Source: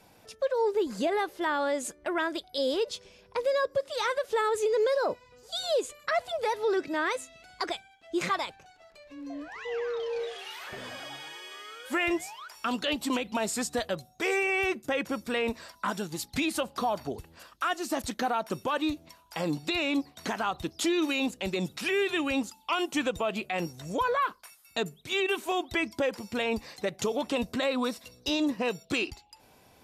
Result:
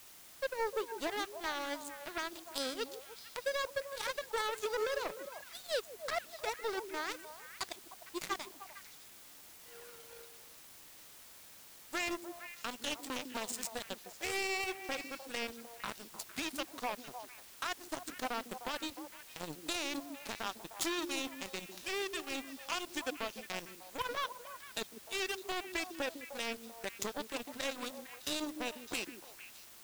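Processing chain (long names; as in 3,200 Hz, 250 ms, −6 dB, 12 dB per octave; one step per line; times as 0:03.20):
bass and treble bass −2 dB, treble +5 dB
power curve on the samples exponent 3
in parallel at −8.5 dB: bit-depth reduction 8 bits, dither triangular
on the sum: echo through a band-pass that steps 152 ms, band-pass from 280 Hz, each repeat 1.4 octaves, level −4.5 dB
level +1 dB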